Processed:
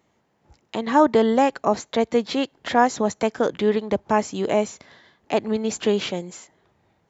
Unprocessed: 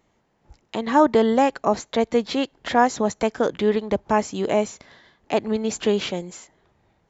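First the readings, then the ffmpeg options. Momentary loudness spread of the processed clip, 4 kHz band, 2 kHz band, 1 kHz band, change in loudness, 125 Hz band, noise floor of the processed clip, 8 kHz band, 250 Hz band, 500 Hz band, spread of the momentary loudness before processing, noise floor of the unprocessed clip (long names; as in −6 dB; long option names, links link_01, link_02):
10 LU, 0.0 dB, 0.0 dB, 0.0 dB, 0.0 dB, 0.0 dB, −68 dBFS, can't be measured, 0.0 dB, 0.0 dB, 10 LU, −67 dBFS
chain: -af "highpass=75"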